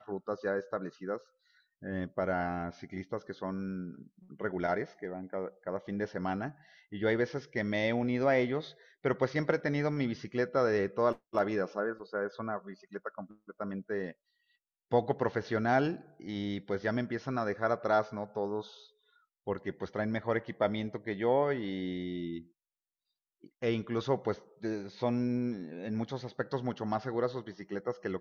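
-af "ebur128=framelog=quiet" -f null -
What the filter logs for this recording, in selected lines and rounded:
Integrated loudness:
  I:         -33.9 LUFS
  Threshold: -44.3 LUFS
Loudness range:
  LRA:         6.2 LU
  Threshold: -54.3 LUFS
  LRA low:   -37.7 LUFS
  LRA high:  -31.5 LUFS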